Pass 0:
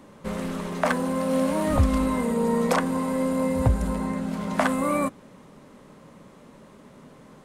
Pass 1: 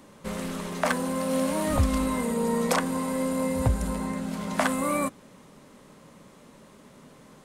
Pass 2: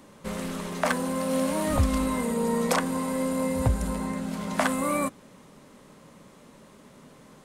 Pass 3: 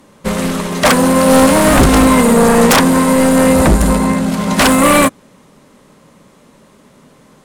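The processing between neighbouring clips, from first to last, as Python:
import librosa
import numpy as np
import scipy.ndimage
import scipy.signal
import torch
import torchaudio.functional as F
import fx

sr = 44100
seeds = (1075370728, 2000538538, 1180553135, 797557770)

y1 = fx.high_shelf(x, sr, hz=2800.0, db=7.5)
y1 = F.gain(torch.from_numpy(y1), -3.0).numpy()
y2 = y1
y3 = fx.fold_sine(y2, sr, drive_db=12, ceiling_db=-11.0)
y3 = fx.upward_expand(y3, sr, threshold_db=-25.0, expansion=2.5)
y3 = F.gain(torch.from_numpy(y3), 7.5).numpy()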